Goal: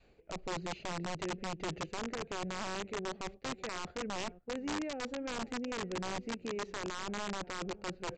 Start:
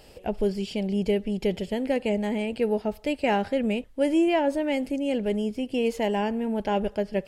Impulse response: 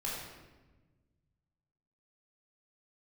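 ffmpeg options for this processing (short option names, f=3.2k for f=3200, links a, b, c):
-filter_complex "[0:a]adynamicequalizer=threshold=0.0126:dfrequency=460:dqfactor=1.3:tfrequency=460:tqfactor=1.3:attack=5:release=100:ratio=0.375:range=3:mode=boostabove:tftype=bell,alimiter=limit=-14dB:level=0:latency=1:release=277,areverse,acompressor=threshold=-35dB:ratio=8,areverse,bass=f=250:g=0,treble=f=4k:g=-12,acrossover=split=330|3000[a][b][c];[b]acompressor=threshold=-40dB:ratio=2.5[d];[a][d][c]amix=inputs=3:normalize=0,asplit=2[e][f];[f]adelay=472.3,volume=-18dB,highshelf=f=4k:g=-10.6[g];[e][g]amix=inputs=2:normalize=0,asetrate=39249,aresample=44100,aeval=exprs='val(0)+0.000282*(sin(2*PI*60*n/s)+sin(2*PI*2*60*n/s)/2+sin(2*PI*3*60*n/s)/3+sin(2*PI*4*60*n/s)/4+sin(2*PI*5*60*n/s)/5)':c=same,agate=range=-10dB:threshold=-48dB:ratio=16:detection=peak,aresample=16000,aeval=exprs='(mod(39.8*val(0)+1,2)-1)/39.8':c=same,aresample=44100"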